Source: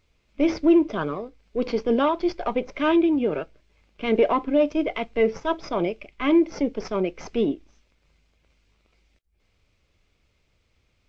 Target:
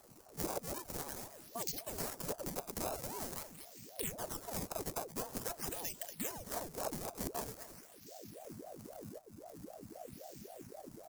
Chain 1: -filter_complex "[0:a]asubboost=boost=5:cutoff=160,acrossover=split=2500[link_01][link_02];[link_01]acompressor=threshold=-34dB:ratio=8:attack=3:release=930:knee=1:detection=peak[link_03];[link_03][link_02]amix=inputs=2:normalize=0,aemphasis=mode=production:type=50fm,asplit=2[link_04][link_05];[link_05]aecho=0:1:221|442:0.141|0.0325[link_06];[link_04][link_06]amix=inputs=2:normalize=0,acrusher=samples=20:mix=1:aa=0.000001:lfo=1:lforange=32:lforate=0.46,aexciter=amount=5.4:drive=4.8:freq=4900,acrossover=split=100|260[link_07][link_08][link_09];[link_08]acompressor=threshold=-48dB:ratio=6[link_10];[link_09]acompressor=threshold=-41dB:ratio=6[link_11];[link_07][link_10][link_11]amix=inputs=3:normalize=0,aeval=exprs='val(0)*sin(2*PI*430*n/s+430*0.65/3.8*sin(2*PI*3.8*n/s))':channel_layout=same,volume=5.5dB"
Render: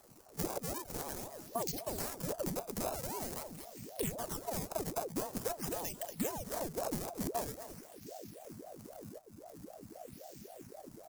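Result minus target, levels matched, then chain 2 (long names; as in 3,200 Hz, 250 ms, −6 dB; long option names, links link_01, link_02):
downward compressor: peak gain reduction −8 dB
-filter_complex "[0:a]asubboost=boost=5:cutoff=160,acrossover=split=2500[link_01][link_02];[link_01]acompressor=threshold=-43dB:ratio=8:attack=3:release=930:knee=1:detection=peak[link_03];[link_03][link_02]amix=inputs=2:normalize=0,aemphasis=mode=production:type=50fm,asplit=2[link_04][link_05];[link_05]aecho=0:1:221|442:0.141|0.0325[link_06];[link_04][link_06]amix=inputs=2:normalize=0,acrusher=samples=20:mix=1:aa=0.000001:lfo=1:lforange=32:lforate=0.46,aexciter=amount=5.4:drive=4.8:freq=4900,acrossover=split=100|260[link_07][link_08][link_09];[link_08]acompressor=threshold=-48dB:ratio=6[link_10];[link_09]acompressor=threshold=-41dB:ratio=6[link_11];[link_07][link_10][link_11]amix=inputs=3:normalize=0,aeval=exprs='val(0)*sin(2*PI*430*n/s+430*0.65/3.8*sin(2*PI*3.8*n/s))':channel_layout=same,volume=5.5dB"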